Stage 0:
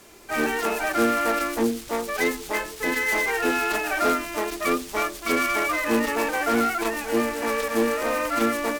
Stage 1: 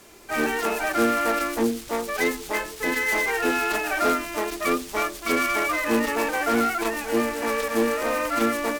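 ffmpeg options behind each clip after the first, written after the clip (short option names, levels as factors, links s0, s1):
-af anull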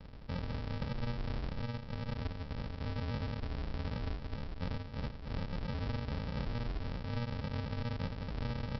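-af "acompressor=threshold=0.0251:ratio=6,alimiter=level_in=2.11:limit=0.0631:level=0:latency=1:release=77,volume=0.473,aresample=11025,acrusher=samples=31:mix=1:aa=0.000001,aresample=44100,volume=1.26"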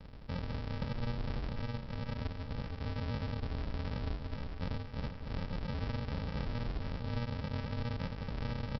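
-filter_complex "[0:a]asplit=2[s0][s1];[s1]adelay=466.5,volume=0.316,highshelf=f=4000:g=-10.5[s2];[s0][s2]amix=inputs=2:normalize=0"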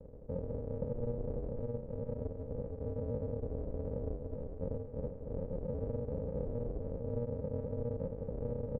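-af "lowpass=f=500:t=q:w=4.9,volume=0.708"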